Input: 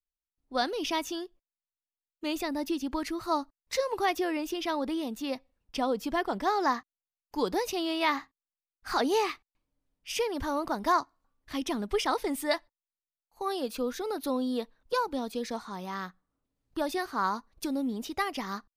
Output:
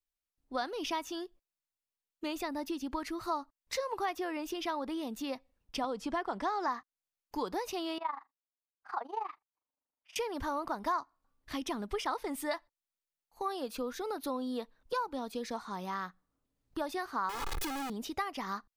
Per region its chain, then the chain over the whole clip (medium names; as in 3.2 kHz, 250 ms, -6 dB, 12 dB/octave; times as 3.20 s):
5.84–6.68 s: low-pass 10 kHz 24 dB/octave + three bands compressed up and down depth 70%
7.98–10.16 s: band-pass filter 910 Hz, Q 1.9 + AM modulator 25 Hz, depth 70%
17.29–17.90 s: one-bit comparator + comb 2.4 ms, depth 83%
whole clip: dynamic bell 1.1 kHz, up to +7 dB, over -41 dBFS, Q 0.97; compression 2.5:1, threshold -36 dBFS